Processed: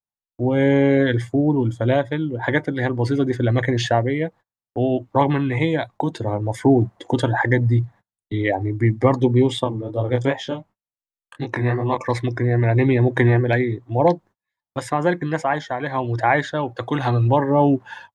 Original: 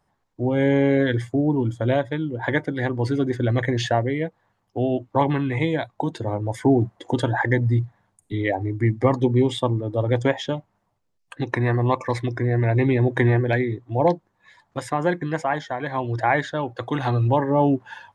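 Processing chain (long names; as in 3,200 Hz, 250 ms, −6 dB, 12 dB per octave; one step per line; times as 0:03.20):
noise gate −43 dBFS, range −34 dB
0:09.64–0:11.98: chorus effect 2.7 Hz, delay 19 ms, depth 5.4 ms
level +2.5 dB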